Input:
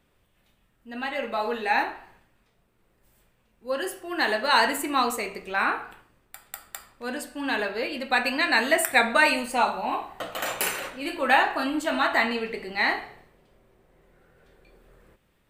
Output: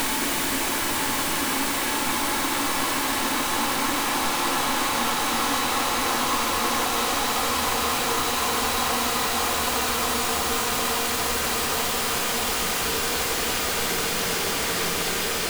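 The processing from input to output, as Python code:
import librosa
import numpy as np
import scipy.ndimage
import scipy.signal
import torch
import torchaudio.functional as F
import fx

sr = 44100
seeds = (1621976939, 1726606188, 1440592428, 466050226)

y = fx.leveller(x, sr, passes=5)
y = 10.0 ** (-16.5 / 20.0) * (np.abs((y / 10.0 ** (-16.5 / 20.0) + 3.0) % 4.0 - 2.0) - 1.0)
y = fx.chorus_voices(y, sr, voices=4, hz=0.86, base_ms=15, depth_ms=3.7, mix_pct=35)
y = fx.paulstretch(y, sr, seeds[0], factor=37.0, window_s=0.5, from_s=4.82)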